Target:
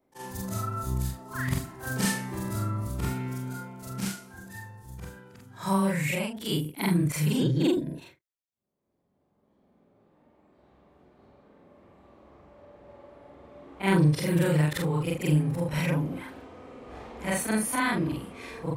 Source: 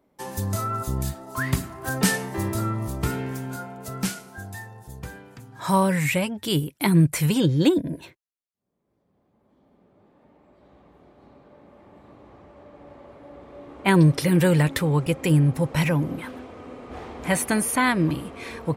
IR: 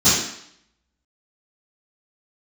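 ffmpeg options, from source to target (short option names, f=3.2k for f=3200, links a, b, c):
-af "afftfilt=real='re':imag='-im':win_size=4096:overlap=0.75,acontrast=89,volume=-8dB"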